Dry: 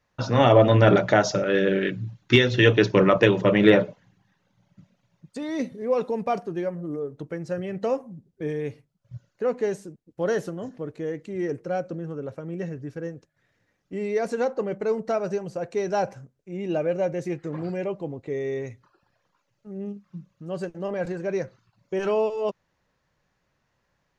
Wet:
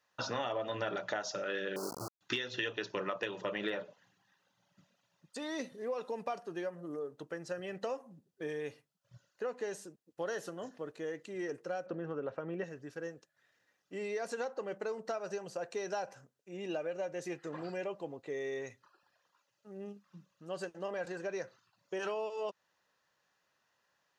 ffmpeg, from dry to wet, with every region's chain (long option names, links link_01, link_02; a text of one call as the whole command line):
ffmpeg -i in.wav -filter_complex "[0:a]asettb=1/sr,asplit=3[link_01][link_02][link_03];[link_01]atrim=end=1.764[link_04];[link_02]atrim=start=1.76:end=2.21,asetpts=PTS-STARTPTS,afade=type=in:duration=0.004:curve=qsin,afade=type=out:start_time=0.446:duration=0.004:curve=qsin,lowshelf=frequency=87:gain=11,aeval=exprs='val(0)*gte(abs(val(0)),0.0501)':channel_layout=same,asuperstop=centerf=2500:order=20:qfactor=0.84[link_05];[link_03]atrim=start=2.206[link_06];[link_04][link_05]acrossfade=duration=0.004:curve1=hsin:curve2=qsin[link_07];[link_07][link_06]acrossfade=duration=0.004:curve1=qsin:curve2=hsin,asettb=1/sr,asplit=3[link_08][link_09][link_10];[link_08]atrim=end=11.864[link_11];[link_09]atrim=start=11.86:end=12.64,asetpts=PTS-STARTPTS,afade=type=in:duration=0.004:curve=qsin,afade=type=out:start_time=0.776:duration=0.004:curve=qsin,lowpass=2600,acontrast=57[link_12];[link_10]atrim=start=12.636[link_13];[link_11][link_12]acrossfade=duration=0.004:curve1=hsin:curve2=qsin[link_14];[link_14][link_13]acrossfade=duration=0.004:curve1=qsin:curve2=hsin,highpass=frequency=1000:poles=1,bandreject=frequency=2200:width=7.7,acompressor=threshold=-34dB:ratio=6" out.wav